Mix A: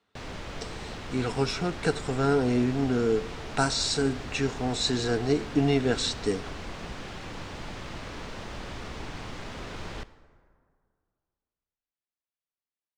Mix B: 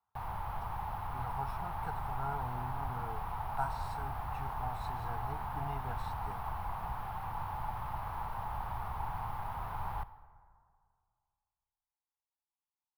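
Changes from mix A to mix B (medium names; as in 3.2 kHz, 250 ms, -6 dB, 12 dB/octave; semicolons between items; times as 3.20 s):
speech -11.0 dB; master: add FFT filter 120 Hz 0 dB, 280 Hz -19 dB, 560 Hz -13 dB, 850 Hz +11 dB, 1.8 kHz -10 dB, 7.3 kHz -25 dB, 12 kHz +12 dB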